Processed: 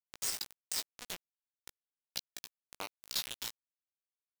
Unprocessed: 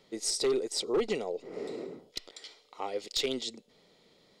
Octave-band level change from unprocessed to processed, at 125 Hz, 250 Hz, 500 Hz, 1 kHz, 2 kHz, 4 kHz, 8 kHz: −10.5, −23.0, −26.0, −9.5, −4.0, −5.0, −3.0 decibels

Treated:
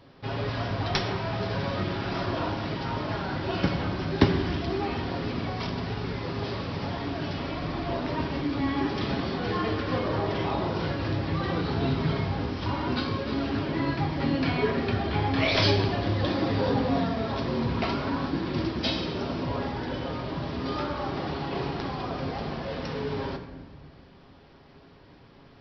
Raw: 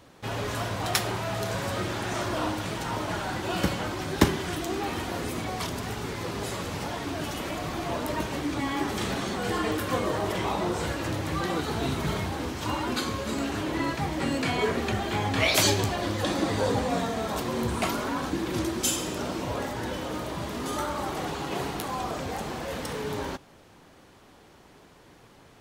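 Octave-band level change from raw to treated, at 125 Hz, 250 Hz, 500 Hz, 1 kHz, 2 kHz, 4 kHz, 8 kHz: +3.5 dB, +2.0 dB, +0.5 dB, −1.0 dB, −1.5 dB, −1.0 dB, below −20 dB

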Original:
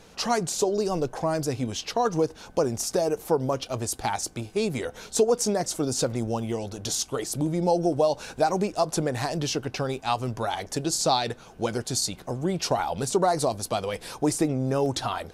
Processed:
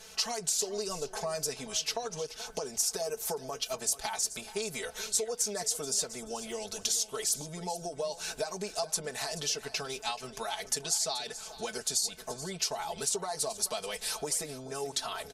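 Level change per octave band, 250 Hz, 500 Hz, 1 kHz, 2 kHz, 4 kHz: −17.0, −11.0, −11.0, −4.5, −1.5 decibels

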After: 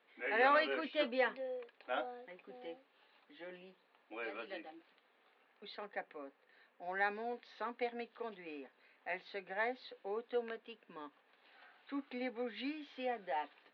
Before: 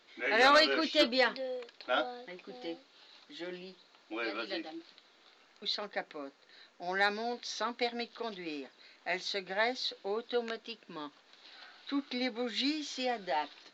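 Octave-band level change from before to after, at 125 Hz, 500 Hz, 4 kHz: can't be measured, −5.5 dB, −15.5 dB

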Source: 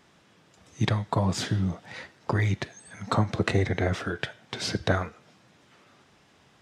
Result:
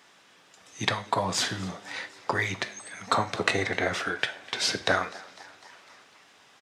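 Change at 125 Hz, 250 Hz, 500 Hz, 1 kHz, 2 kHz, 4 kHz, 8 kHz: −11.5, −6.0, −0.5, +3.5, +5.0, +5.5, +6.0 decibels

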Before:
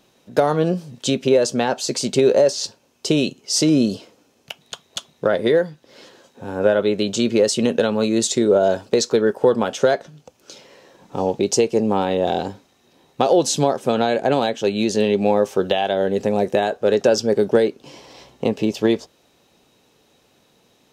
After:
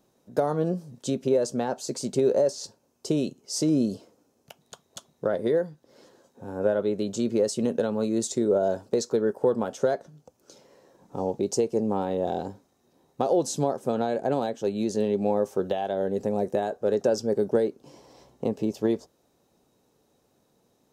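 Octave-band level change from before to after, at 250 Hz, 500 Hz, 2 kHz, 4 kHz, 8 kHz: −6.5, −7.5, −14.0, −14.5, −10.0 decibels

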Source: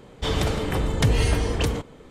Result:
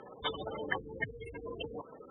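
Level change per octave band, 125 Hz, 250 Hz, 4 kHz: −26.0, −18.0, −12.0 decibels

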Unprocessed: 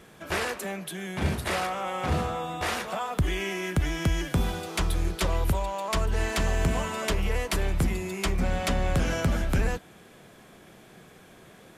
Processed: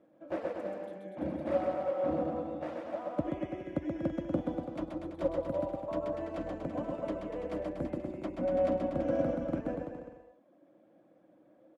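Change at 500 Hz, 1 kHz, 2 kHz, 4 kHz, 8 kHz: 0.0 dB, −9.0 dB, −18.5 dB, below −20 dB, below −30 dB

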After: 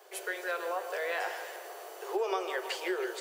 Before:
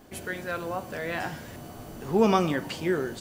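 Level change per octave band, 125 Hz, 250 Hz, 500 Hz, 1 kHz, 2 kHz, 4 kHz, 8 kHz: below −40 dB, −15.0 dB, −5.5 dB, −5.0 dB, −1.5 dB, −2.5 dB, −1.5 dB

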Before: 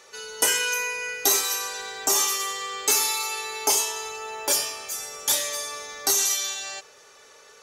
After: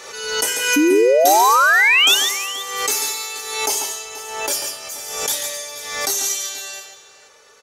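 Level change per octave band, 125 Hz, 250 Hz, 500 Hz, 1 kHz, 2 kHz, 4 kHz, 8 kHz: can't be measured, +20.0 dB, +14.0 dB, +12.5 dB, +12.0 dB, +7.0 dB, +1.5 dB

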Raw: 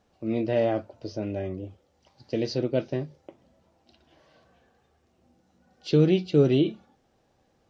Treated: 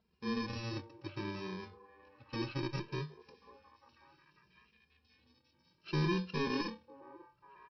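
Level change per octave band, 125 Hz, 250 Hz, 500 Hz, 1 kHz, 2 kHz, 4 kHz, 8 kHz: −11.0 dB, −12.0 dB, −17.0 dB, −3.0 dB, −1.5 dB, −5.5 dB, can't be measured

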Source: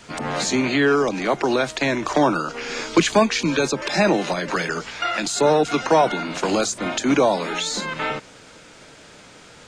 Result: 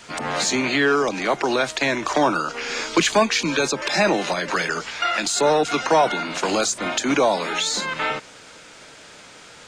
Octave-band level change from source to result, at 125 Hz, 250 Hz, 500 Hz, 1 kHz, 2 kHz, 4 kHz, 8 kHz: −4.5, −3.0, −1.0, +0.5, +2.0, +2.5, +2.5 decibels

